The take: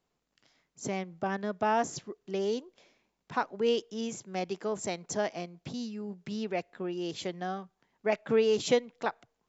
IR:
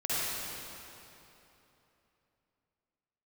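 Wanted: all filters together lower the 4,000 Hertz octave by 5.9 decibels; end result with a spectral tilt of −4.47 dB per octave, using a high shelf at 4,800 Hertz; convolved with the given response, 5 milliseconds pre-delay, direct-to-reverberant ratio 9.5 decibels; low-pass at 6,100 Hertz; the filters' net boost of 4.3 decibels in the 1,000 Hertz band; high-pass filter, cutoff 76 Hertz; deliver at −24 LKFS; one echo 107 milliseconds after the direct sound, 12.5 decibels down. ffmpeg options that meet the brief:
-filter_complex "[0:a]highpass=76,lowpass=6100,equalizer=frequency=1000:width_type=o:gain=6,equalizer=frequency=4000:width_type=o:gain=-6,highshelf=frequency=4800:gain=-5,aecho=1:1:107:0.237,asplit=2[link_01][link_02];[1:a]atrim=start_sample=2205,adelay=5[link_03];[link_02][link_03]afir=irnorm=-1:irlink=0,volume=-19dB[link_04];[link_01][link_04]amix=inputs=2:normalize=0,volume=7dB"

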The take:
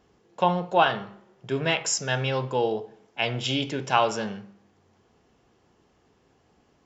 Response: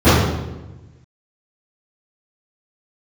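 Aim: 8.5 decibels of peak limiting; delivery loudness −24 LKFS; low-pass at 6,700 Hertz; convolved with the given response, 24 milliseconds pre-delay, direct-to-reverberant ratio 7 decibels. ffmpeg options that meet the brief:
-filter_complex "[0:a]lowpass=6700,alimiter=limit=-14dB:level=0:latency=1,asplit=2[link_01][link_02];[1:a]atrim=start_sample=2205,adelay=24[link_03];[link_02][link_03]afir=irnorm=-1:irlink=0,volume=-36.5dB[link_04];[link_01][link_04]amix=inputs=2:normalize=0,volume=1.5dB"

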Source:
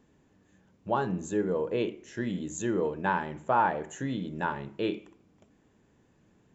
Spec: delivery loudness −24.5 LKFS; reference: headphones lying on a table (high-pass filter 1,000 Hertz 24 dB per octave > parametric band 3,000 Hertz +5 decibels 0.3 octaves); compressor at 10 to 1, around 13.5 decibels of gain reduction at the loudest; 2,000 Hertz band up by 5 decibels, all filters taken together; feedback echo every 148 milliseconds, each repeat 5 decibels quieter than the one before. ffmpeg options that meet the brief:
ffmpeg -i in.wav -af "equalizer=frequency=2000:width_type=o:gain=7,acompressor=threshold=-32dB:ratio=10,highpass=frequency=1000:width=0.5412,highpass=frequency=1000:width=1.3066,equalizer=frequency=3000:width_type=o:width=0.3:gain=5,aecho=1:1:148|296|444|592|740|888|1036:0.562|0.315|0.176|0.0988|0.0553|0.031|0.0173,volume=17dB" out.wav

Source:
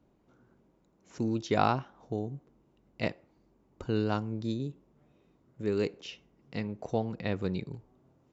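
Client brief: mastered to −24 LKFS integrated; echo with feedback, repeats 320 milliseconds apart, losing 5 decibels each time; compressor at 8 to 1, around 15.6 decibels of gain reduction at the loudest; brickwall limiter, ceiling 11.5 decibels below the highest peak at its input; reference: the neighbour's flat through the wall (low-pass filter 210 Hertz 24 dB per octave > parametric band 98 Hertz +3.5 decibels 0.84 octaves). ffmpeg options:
ffmpeg -i in.wav -af "acompressor=threshold=-37dB:ratio=8,alimiter=level_in=11.5dB:limit=-24dB:level=0:latency=1,volume=-11.5dB,lowpass=frequency=210:width=0.5412,lowpass=frequency=210:width=1.3066,equalizer=frequency=98:width_type=o:width=0.84:gain=3.5,aecho=1:1:320|640|960|1280|1600|1920|2240:0.562|0.315|0.176|0.0988|0.0553|0.031|0.0173,volume=25.5dB" out.wav

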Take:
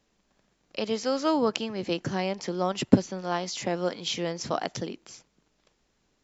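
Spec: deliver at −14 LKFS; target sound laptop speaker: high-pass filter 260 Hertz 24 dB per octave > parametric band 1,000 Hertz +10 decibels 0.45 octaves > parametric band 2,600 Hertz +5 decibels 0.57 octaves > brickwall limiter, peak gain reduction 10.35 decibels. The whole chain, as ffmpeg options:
ffmpeg -i in.wav -af "highpass=frequency=260:width=0.5412,highpass=frequency=260:width=1.3066,equalizer=frequency=1000:width_type=o:width=0.45:gain=10,equalizer=frequency=2600:width_type=o:width=0.57:gain=5,volume=16dB,alimiter=limit=-1dB:level=0:latency=1" out.wav

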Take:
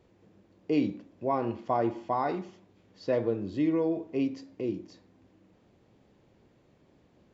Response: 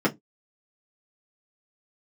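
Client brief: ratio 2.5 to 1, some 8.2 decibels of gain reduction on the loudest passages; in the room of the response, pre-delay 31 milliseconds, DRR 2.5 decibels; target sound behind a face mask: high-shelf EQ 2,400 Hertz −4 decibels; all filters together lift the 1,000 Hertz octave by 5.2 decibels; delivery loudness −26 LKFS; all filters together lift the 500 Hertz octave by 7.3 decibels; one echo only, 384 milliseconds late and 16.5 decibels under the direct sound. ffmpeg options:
-filter_complex "[0:a]equalizer=frequency=500:width_type=o:gain=8,equalizer=frequency=1000:width_type=o:gain=4,acompressor=threshold=-28dB:ratio=2.5,aecho=1:1:384:0.15,asplit=2[link_01][link_02];[1:a]atrim=start_sample=2205,adelay=31[link_03];[link_02][link_03]afir=irnorm=-1:irlink=0,volume=-16.5dB[link_04];[link_01][link_04]amix=inputs=2:normalize=0,highshelf=frequency=2400:gain=-4"

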